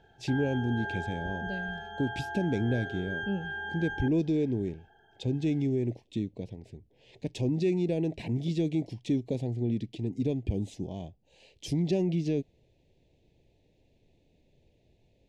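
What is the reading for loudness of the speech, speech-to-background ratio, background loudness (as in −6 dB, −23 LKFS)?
−31.5 LKFS, 6.0 dB, −37.5 LKFS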